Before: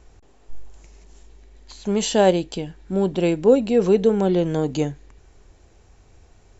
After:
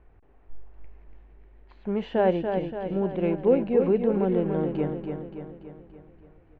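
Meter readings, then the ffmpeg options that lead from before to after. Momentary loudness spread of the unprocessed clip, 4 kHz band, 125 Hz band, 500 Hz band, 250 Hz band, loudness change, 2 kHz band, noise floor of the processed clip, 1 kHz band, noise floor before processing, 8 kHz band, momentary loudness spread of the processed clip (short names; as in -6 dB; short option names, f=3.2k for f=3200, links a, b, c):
11 LU, under -15 dB, -5.0 dB, -5.0 dB, -4.5 dB, -5.5 dB, -6.5 dB, -56 dBFS, -4.5 dB, -53 dBFS, n/a, 17 LU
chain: -af "lowpass=f=2.3k:w=0.5412,lowpass=f=2.3k:w=1.3066,aecho=1:1:287|574|861|1148|1435|1722|2009:0.501|0.271|0.146|0.0789|0.0426|0.023|0.0124,volume=-6dB"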